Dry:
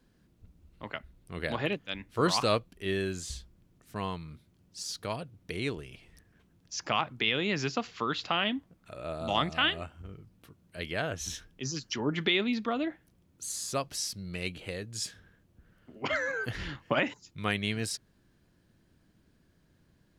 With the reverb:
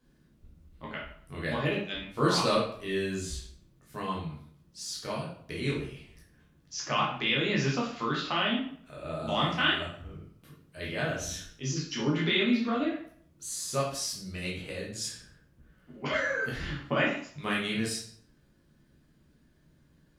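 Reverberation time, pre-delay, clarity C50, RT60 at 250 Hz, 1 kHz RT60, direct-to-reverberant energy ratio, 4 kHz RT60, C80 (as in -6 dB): 0.60 s, 10 ms, 4.0 dB, 0.55 s, 0.60 s, -5.0 dB, 0.45 s, 8.5 dB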